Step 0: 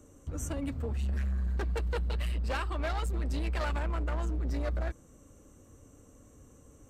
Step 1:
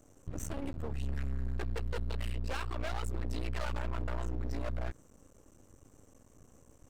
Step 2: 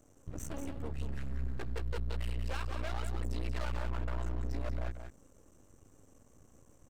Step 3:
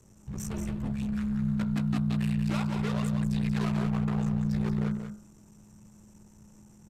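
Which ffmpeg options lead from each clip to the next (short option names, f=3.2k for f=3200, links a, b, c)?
-af "aeval=exprs='max(val(0),0)':c=same"
-af "aecho=1:1:184:0.422,volume=-2.5dB"
-af "aresample=32000,aresample=44100,afreqshift=-210,bandreject=f=47.51:t=h:w=4,bandreject=f=95.02:t=h:w=4,bandreject=f=142.53:t=h:w=4,bandreject=f=190.04:t=h:w=4,bandreject=f=237.55:t=h:w=4,bandreject=f=285.06:t=h:w=4,bandreject=f=332.57:t=h:w=4,bandreject=f=380.08:t=h:w=4,bandreject=f=427.59:t=h:w=4,bandreject=f=475.1:t=h:w=4,bandreject=f=522.61:t=h:w=4,bandreject=f=570.12:t=h:w=4,bandreject=f=617.63:t=h:w=4,bandreject=f=665.14:t=h:w=4,bandreject=f=712.65:t=h:w=4,bandreject=f=760.16:t=h:w=4,bandreject=f=807.67:t=h:w=4,bandreject=f=855.18:t=h:w=4,bandreject=f=902.69:t=h:w=4,bandreject=f=950.2:t=h:w=4,bandreject=f=997.71:t=h:w=4,bandreject=f=1.04522k:t=h:w=4,bandreject=f=1.09273k:t=h:w=4,bandreject=f=1.14024k:t=h:w=4,bandreject=f=1.18775k:t=h:w=4,bandreject=f=1.23526k:t=h:w=4,bandreject=f=1.28277k:t=h:w=4,bandreject=f=1.33028k:t=h:w=4,bandreject=f=1.37779k:t=h:w=4,bandreject=f=1.4253k:t=h:w=4,bandreject=f=1.47281k:t=h:w=4,bandreject=f=1.52032k:t=h:w=4,bandreject=f=1.56783k:t=h:w=4,volume=6dB"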